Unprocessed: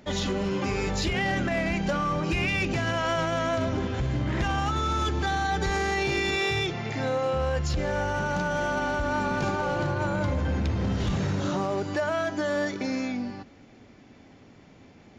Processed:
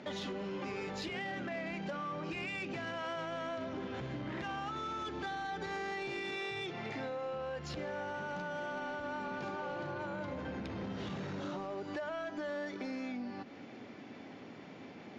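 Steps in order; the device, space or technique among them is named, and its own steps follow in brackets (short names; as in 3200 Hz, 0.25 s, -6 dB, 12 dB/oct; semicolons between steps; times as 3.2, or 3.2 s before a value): AM radio (BPF 190–4400 Hz; compressor 4:1, threshold -43 dBFS, peak gain reduction 16 dB; soft clip -35 dBFS, distortion -21 dB); gain +4 dB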